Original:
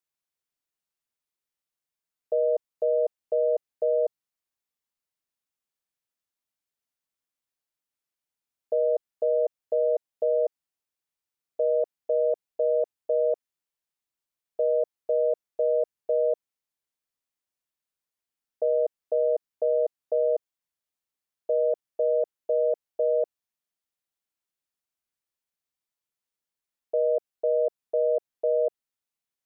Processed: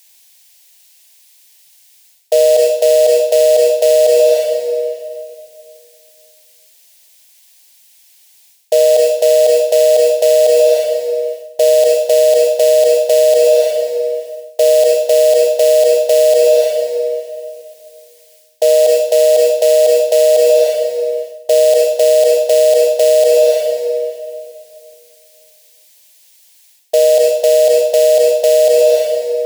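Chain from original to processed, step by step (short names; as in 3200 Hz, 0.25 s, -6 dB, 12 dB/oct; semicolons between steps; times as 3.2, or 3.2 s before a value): in parallel at -9 dB: companded quantiser 4-bit; on the sum: tilt shelf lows -7.5 dB, about 660 Hz; reverb RT60 2.5 s, pre-delay 18 ms, DRR 9.5 dB; reverse; compressor 10:1, threshold -33 dBFS, peak gain reduction 15 dB; reverse; low shelf 460 Hz -11 dB; fixed phaser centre 340 Hz, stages 6; maximiser +35.5 dB; gain -1 dB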